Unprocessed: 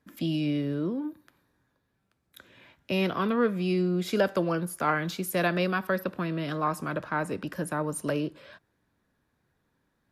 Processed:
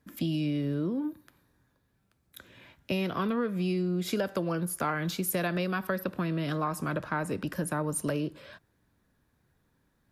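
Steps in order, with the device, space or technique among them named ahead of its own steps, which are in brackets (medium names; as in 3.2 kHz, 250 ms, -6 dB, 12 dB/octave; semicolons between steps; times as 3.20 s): ASMR close-microphone chain (bass shelf 160 Hz +7 dB; compression, threshold -26 dBFS, peak gain reduction 8 dB; treble shelf 6.8 kHz +6 dB)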